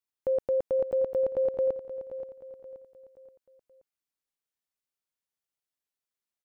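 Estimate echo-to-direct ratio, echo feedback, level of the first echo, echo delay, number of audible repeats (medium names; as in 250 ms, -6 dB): -11.0 dB, 42%, -12.0 dB, 527 ms, 4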